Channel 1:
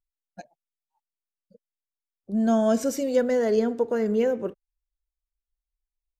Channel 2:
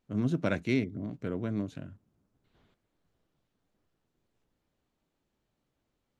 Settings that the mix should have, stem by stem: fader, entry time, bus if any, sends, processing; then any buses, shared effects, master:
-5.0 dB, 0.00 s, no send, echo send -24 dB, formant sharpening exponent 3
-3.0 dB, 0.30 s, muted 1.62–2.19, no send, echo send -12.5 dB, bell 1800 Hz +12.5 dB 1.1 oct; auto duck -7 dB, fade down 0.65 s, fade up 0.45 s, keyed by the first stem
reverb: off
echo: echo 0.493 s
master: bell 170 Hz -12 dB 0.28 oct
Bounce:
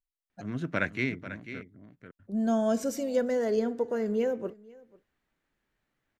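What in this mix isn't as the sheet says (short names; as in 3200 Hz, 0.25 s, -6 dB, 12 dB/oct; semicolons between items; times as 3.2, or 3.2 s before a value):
stem 1: missing formant sharpening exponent 3; master: missing bell 170 Hz -12 dB 0.28 oct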